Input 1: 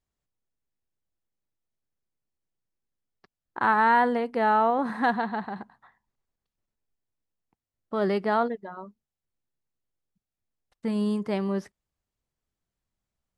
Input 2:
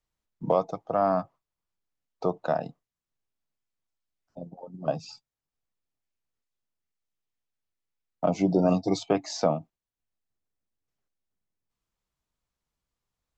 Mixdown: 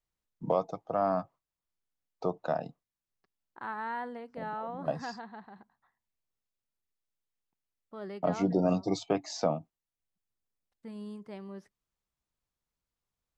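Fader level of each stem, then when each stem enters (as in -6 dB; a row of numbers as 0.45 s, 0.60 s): -16.0 dB, -4.5 dB; 0.00 s, 0.00 s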